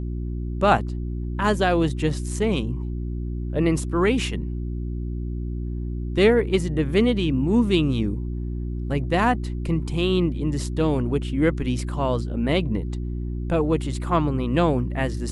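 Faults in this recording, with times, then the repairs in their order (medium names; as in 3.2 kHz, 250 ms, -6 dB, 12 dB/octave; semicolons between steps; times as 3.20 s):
hum 60 Hz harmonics 6 -28 dBFS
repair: de-hum 60 Hz, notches 6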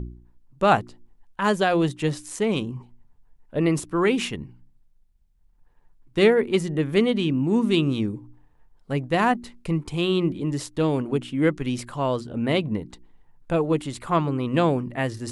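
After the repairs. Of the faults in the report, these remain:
nothing left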